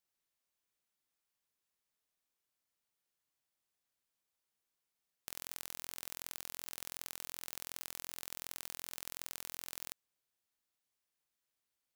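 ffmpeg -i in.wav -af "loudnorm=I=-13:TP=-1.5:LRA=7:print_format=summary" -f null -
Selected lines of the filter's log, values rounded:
Input Integrated:    -44.3 LUFS
Input True Peak:     -14.4 dBTP
Input LRA:             5.3 LU
Input Threshold:     -54.3 LUFS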